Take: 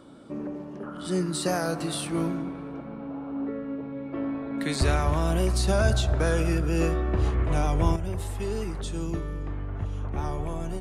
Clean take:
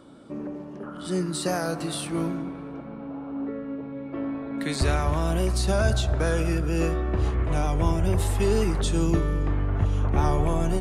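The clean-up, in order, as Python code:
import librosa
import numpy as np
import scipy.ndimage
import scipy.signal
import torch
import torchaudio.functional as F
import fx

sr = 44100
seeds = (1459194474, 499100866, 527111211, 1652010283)

y = fx.gain(x, sr, db=fx.steps((0.0, 0.0), (7.96, 8.0)))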